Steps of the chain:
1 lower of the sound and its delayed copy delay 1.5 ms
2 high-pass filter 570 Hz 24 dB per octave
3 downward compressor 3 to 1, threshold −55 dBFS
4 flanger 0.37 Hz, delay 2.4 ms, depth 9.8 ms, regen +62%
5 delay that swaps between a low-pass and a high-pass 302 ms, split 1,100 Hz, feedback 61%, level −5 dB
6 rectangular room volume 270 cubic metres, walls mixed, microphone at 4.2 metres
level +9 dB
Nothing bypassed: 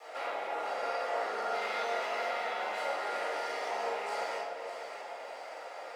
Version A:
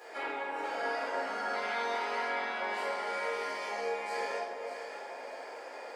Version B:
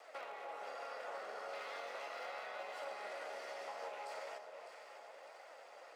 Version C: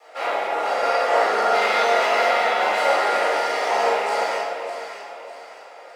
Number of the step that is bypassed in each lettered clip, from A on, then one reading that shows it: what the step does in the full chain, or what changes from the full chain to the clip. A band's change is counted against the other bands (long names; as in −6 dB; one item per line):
1, 250 Hz band +5.5 dB
6, echo-to-direct ratio 10.0 dB to −7.0 dB
3, average gain reduction 10.5 dB